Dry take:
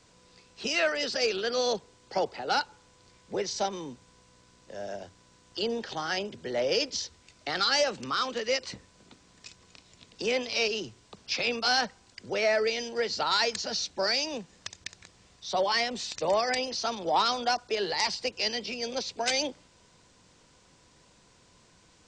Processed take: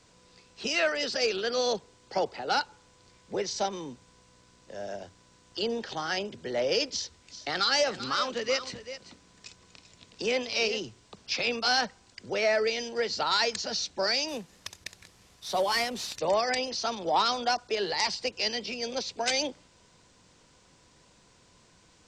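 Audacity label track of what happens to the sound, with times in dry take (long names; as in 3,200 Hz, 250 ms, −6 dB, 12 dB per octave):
6.910000	10.790000	single-tap delay 390 ms −12.5 dB
14.280000	16.190000	variable-slope delta modulation 64 kbit/s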